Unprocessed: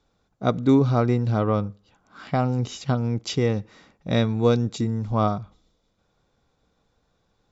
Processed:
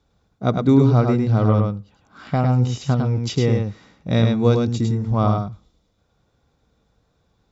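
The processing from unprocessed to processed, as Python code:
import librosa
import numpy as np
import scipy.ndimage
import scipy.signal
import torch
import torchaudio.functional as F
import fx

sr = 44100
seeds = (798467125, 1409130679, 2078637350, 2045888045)

p1 = scipy.signal.sosfilt(scipy.signal.butter(2, 40.0, 'highpass', fs=sr, output='sos'), x)
p2 = fx.low_shelf(p1, sr, hz=160.0, db=8.0)
y = p2 + fx.echo_single(p2, sr, ms=104, db=-4.0, dry=0)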